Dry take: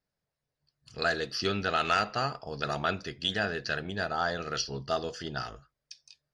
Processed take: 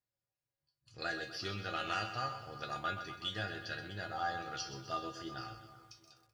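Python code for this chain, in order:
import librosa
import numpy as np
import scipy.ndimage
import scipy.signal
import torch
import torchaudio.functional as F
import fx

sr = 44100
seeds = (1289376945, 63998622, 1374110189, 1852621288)

p1 = fx.comb_fb(x, sr, f0_hz=110.0, decay_s=0.25, harmonics='odd', damping=0.0, mix_pct=90)
p2 = p1 + fx.echo_wet_lowpass(p1, sr, ms=380, feedback_pct=40, hz=2100.0, wet_db=-16.0, dry=0)
p3 = fx.echo_crushed(p2, sr, ms=127, feedback_pct=55, bits=11, wet_db=-10.5)
y = p3 * librosa.db_to_amplitude(2.0)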